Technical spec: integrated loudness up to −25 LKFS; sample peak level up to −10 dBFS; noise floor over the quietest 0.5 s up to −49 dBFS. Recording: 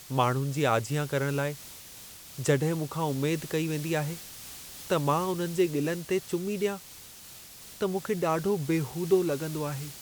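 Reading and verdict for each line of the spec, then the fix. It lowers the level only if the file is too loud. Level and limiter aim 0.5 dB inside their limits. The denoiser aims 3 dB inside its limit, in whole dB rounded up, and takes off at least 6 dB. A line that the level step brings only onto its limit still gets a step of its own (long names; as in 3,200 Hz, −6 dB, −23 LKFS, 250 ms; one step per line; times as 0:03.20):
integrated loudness −29.0 LKFS: in spec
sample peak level −10.5 dBFS: in spec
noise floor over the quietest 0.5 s −48 dBFS: out of spec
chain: broadband denoise 6 dB, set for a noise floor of −48 dBFS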